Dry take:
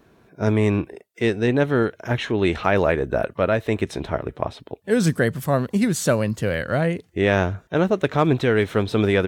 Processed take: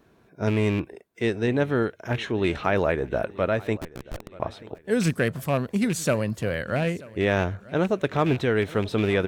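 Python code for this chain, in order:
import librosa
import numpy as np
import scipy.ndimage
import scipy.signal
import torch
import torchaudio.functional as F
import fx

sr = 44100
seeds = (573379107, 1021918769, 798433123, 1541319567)

y = fx.rattle_buzz(x, sr, strikes_db=-20.0, level_db=-20.0)
y = fx.schmitt(y, sr, flips_db=-19.5, at=(3.77, 4.4))
y = fx.echo_feedback(y, sr, ms=933, feedback_pct=37, wet_db=-21.0)
y = y * 10.0 ** (-4.0 / 20.0)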